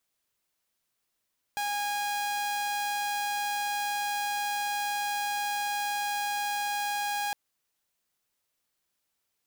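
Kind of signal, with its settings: tone saw 821 Hz -26 dBFS 5.76 s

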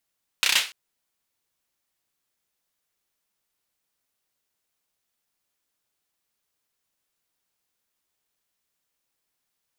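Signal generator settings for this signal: hand clap length 0.29 s, bursts 5, apart 31 ms, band 2.8 kHz, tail 0.31 s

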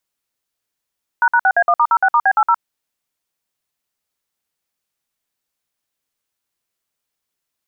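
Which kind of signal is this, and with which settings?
DTMF "##6A1*06*B80", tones 60 ms, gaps 55 ms, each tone -12.5 dBFS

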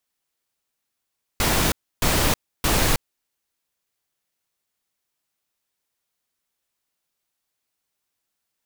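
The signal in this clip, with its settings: noise bursts pink, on 0.32 s, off 0.30 s, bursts 3, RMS -19.5 dBFS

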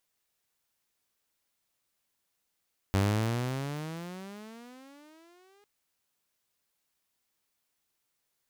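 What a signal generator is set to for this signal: gliding synth tone saw, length 2.70 s, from 95.1 Hz, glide +25.5 st, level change -38 dB, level -20 dB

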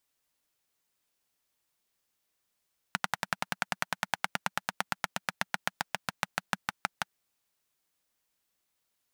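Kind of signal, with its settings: single-cylinder engine model, changing speed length 4.11 s, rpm 1300, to 700, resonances 190/870/1400 Hz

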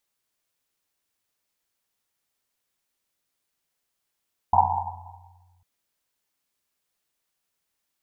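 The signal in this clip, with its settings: Risset drum, pitch 90 Hz, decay 2.08 s, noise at 860 Hz, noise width 230 Hz, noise 80%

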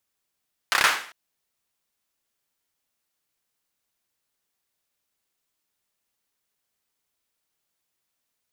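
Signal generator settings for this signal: hand clap length 0.40 s, bursts 5, apart 30 ms, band 1.5 kHz, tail 0.48 s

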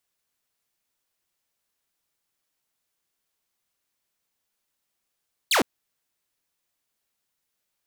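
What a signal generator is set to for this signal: laser zap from 4.7 kHz, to 200 Hz, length 0.11 s saw, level -15 dB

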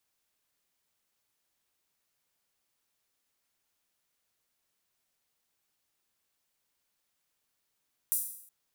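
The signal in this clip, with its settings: open hi-hat length 0.37 s, high-pass 9.9 kHz, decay 0.67 s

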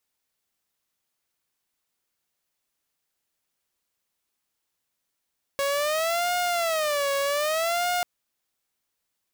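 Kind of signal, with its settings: siren wail 556–713 Hz 0.64 per s saw -20.5 dBFS 2.44 s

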